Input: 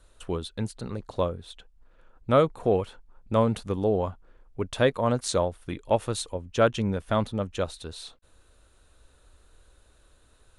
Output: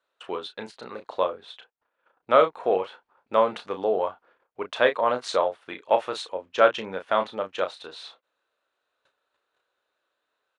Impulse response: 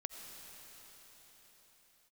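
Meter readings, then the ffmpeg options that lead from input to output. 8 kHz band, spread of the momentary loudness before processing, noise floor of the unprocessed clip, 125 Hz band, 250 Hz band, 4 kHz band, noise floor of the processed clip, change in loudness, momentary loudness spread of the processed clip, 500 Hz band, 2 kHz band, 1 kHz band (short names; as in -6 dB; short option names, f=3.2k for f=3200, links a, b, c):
-9.0 dB, 15 LU, -60 dBFS, under -20 dB, -8.5 dB, +2.0 dB, -80 dBFS, +2.0 dB, 18 LU, +2.0 dB, +6.0 dB, +5.5 dB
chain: -filter_complex "[0:a]agate=range=-16dB:threshold=-51dB:ratio=16:detection=peak,highpass=590,lowpass=3.3k,asplit=2[a][b];[b]adelay=32,volume=-8dB[c];[a][c]amix=inputs=2:normalize=0,volume=5.5dB"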